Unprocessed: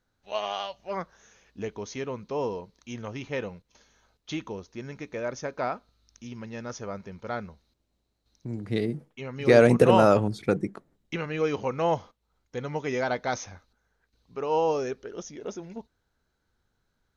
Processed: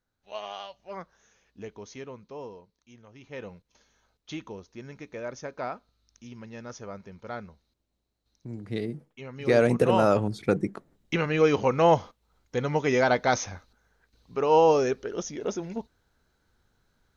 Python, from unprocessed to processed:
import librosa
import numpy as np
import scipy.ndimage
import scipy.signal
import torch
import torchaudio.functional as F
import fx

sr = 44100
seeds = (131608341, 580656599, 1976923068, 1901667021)

y = fx.gain(x, sr, db=fx.line((1.96, -6.5), (3.08, -16.5), (3.5, -4.0), (9.89, -4.0), (11.19, 5.5)))